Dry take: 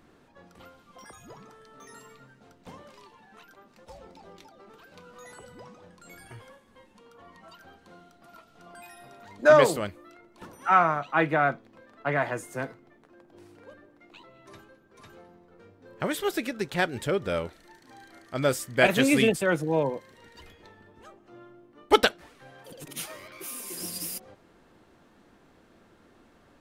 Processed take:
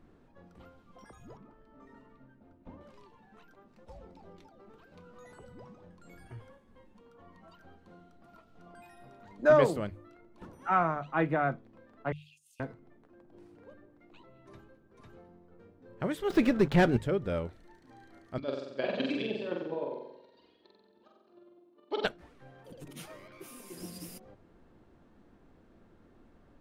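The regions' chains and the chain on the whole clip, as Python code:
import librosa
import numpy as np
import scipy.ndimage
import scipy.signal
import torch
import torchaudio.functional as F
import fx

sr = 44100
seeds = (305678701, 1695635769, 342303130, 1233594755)

y = fx.chain(x, sr, fx.spacing_loss(db_at_10k=28),
    fx.comb(ms=3.3, depth=0.52),
    fx.running_max(window=3), at=(1.37, 2.81))
y = fx.chain(y, sr, fx.cheby1_highpass(hz=2600.0, order=8),
    fx.over_compress(threshold_db=-50.0, ratio=-0.5), at=(12.12, 12.6))
y = fx.chain(y, sr, fx.median_filter(points=5),
    fx.leveller(passes=3), at=(16.3, 16.97))
y = fx.chain(y, sr, fx.chopper(hz=9.7, depth_pct=60, duty_pct=15),
    fx.cabinet(low_hz=340.0, low_slope=12, high_hz=4700.0, hz=(490.0, 780.0, 1400.0, 2000.0, 4200.0), db=(-3, -5, -7, -10, 9)),
    fx.room_flutter(wall_m=7.8, rt60_s=0.88), at=(18.38, 22.05))
y = fx.tilt_eq(y, sr, slope=-2.5)
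y = fx.hum_notches(y, sr, base_hz=50, count=3)
y = y * 10.0 ** (-6.5 / 20.0)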